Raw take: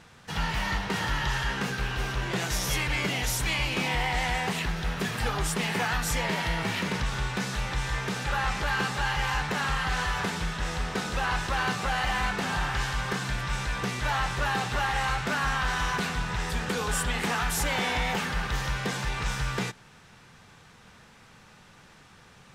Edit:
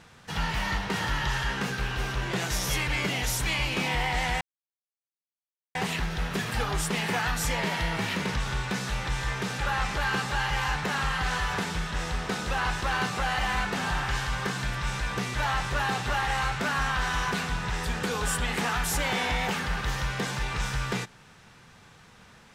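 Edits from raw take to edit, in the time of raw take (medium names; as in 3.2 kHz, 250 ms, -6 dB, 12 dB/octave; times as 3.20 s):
4.41 s: insert silence 1.34 s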